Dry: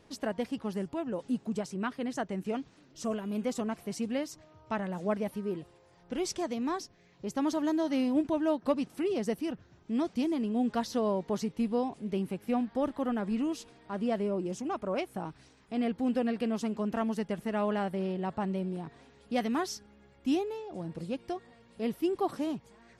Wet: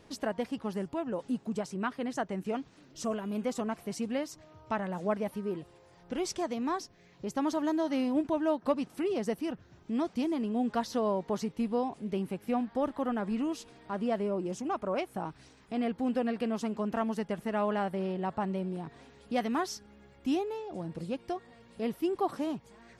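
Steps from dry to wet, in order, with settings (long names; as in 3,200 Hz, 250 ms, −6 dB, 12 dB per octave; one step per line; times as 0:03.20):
dynamic equaliser 1,000 Hz, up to +4 dB, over −42 dBFS, Q 0.71
in parallel at +0.5 dB: downward compressor, threshold −41 dBFS, peak gain reduction 19 dB
on the sum: level −3.5 dB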